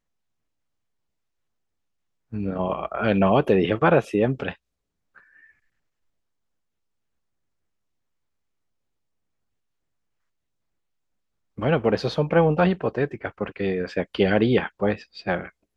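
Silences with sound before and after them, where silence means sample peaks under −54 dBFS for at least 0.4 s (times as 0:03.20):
0:04.56–0:05.15
0:05.52–0:11.57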